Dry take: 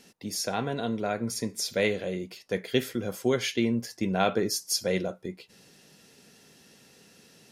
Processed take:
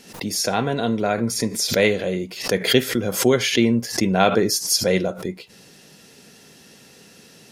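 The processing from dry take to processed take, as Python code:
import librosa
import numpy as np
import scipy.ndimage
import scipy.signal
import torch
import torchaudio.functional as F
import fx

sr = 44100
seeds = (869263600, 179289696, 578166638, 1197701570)

y = fx.pre_swell(x, sr, db_per_s=110.0)
y = F.gain(torch.from_numpy(y), 8.0).numpy()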